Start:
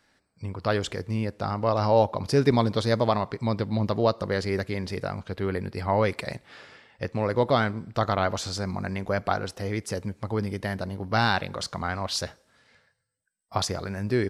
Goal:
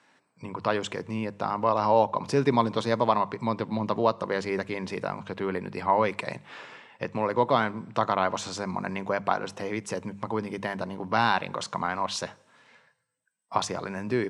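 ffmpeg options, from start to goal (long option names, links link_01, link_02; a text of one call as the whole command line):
ffmpeg -i in.wav -filter_complex "[0:a]bandreject=frequency=50:width_type=h:width=6,bandreject=frequency=100:width_type=h:width=6,bandreject=frequency=150:width_type=h:width=6,bandreject=frequency=200:width_type=h:width=6,asplit=2[link_01][link_02];[link_02]acompressor=threshold=-35dB:ratio=6,volume=0dB[link_03];[link_01][link_03]amix=inputs=2:normalize=0,highpass=frequency=130:width=0.5412,highpass=frequency=130:width=1.3066,equalizer=frequency=990:width_type=q:width=4:gain=9,equalizer=frequency=2600:width_type=q:width=4:gain=4,equalizer=frequency=4700:width_type=q:width=4:gain=-7,lowpass=frequency=9100:width=0.5412,lowpass=frequency=9100:width=1.3066,volume=-3.5dB" out.wav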